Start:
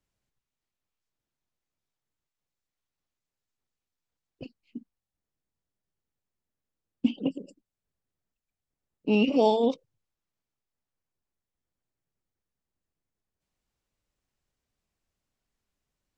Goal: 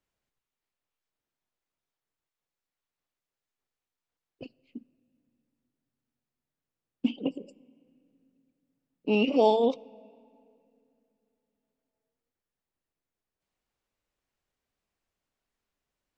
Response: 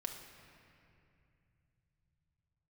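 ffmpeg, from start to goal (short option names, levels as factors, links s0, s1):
-filter_complex "[0:a]bass=f=250:g=-7,treble=f=4000:g=-5,asplit=2[s0][s1];[1:a]atrim=start_sample=2205[s2];[s1][s2]afir=irnorm=-1:irlink=0,volume=0.158[s3];[s0][s3]amix=inputs=2:normalize=0"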